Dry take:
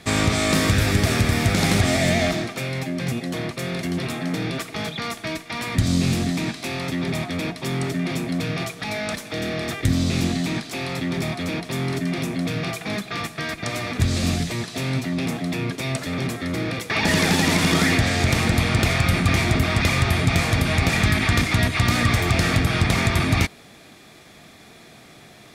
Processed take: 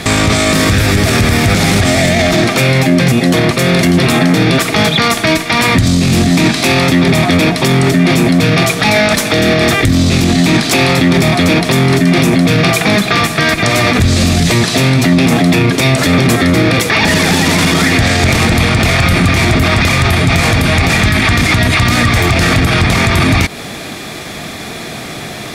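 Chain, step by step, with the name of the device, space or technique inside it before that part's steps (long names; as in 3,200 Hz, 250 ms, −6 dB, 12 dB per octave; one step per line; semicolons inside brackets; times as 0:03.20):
loud club master (downward compressor 2.5 to 1, threshold −23 dBFS, peak gain reduction 6.5 dB; hard clipping −13 dBFS, distortion −49 dB; boost into a limiter +23 dB)
level −1 dB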